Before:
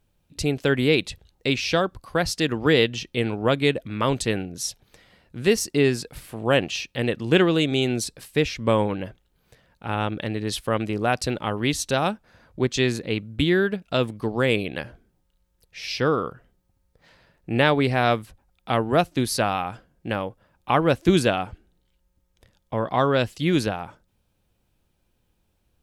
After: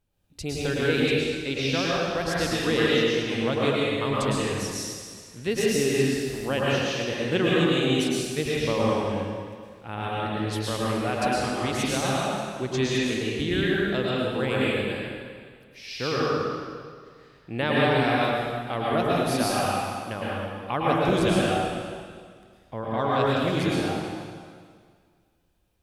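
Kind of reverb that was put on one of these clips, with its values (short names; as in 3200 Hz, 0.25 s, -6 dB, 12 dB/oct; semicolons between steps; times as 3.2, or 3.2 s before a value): plate-style reverb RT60 1.9 s, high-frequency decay 0.95×, pre-delay 95 ms, DRR -6.5 dB; gain -8.5 dB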